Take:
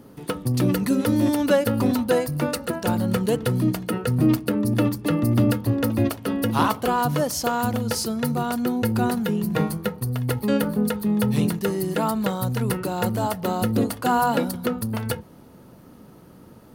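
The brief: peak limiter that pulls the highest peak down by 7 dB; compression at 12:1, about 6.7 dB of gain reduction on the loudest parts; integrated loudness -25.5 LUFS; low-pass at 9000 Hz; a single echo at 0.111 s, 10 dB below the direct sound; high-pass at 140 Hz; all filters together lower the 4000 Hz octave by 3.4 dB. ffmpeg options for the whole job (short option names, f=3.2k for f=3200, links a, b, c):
-af "highpass=140,lowpass=9k,equalizer=f=4k:t=o:g=-4.5,acompressor=threshold=-22dB:ratio=12,alimiter=limit=-18.5dB:level=0:latency=1,aecho=1:1:111:0.316,volume=3dB"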